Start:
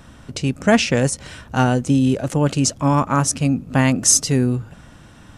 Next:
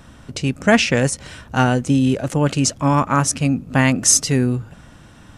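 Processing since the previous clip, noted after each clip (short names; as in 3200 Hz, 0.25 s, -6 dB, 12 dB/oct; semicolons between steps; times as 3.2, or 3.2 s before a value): dynamic EQ 2000 Hz, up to +4 dB, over -34 dBFS, Q 0.98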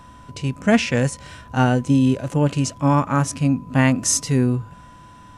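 harmonic-percussive split percussive -9 dB; whine 1000 Hz -45 dBFS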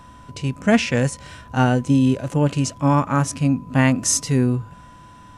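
nothing audible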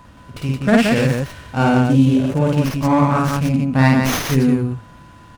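loudspeakers at several distances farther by 18 m -1 dB, 59 m -3 dB; running maximum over 5 samples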